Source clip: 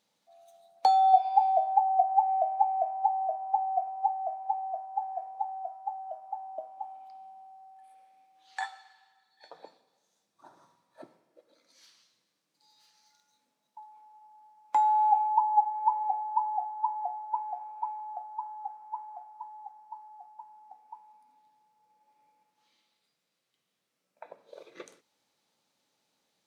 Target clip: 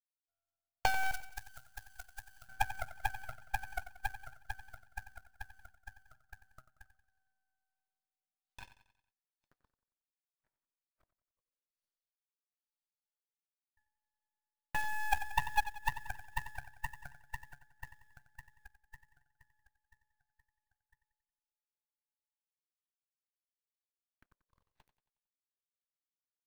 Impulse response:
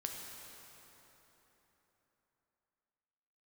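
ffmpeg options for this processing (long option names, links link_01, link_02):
-filter_complex "[0:a]acrusher=bits=5:mode=log:mix=0:aa=0.000001,asettb=1/sr,asplit=3[link_01][link_02][link_03];[link_01]atrim=end=1.114[link_04];[link_02]atrim=start=1.11:end=2.49,asetpts=PTS-STARTPTS,afade=type=in:duration=0.004:curve=qsin,afade=type=out:start_time=1.376:duration=0.004:curve=qsin,equalizer=frequency=640:width_type=o:width=2.8:gain=-11[link_05];[link_03]atrim=start=2.486[link_06];[link_04][link_05]acrossfade=duration=0.004:curve1=hsin:curve2=qsin[link_07];[link_07][link_06]acrossfade=duration=0.004:curve1=qsin:curve2=hsin,aeval=exprs='0.531*(cos(1*acos(clip(val(0)/0.531,-1,1)))-cos(1*PI/2))+0.075*(cos(7*acos(clip(val(0)/0.531,-1,1)))-cos(7*PI/2))+0.0596*(cos(8*acos(clip(val(0)/0.531,-1,1)))-cos(8*PI/2))':channel_layout=same,aecho=1:1:91|182|273|364|455:0.224|0.105|0.0495|0.0232|0.0109,volume=-5.5dB"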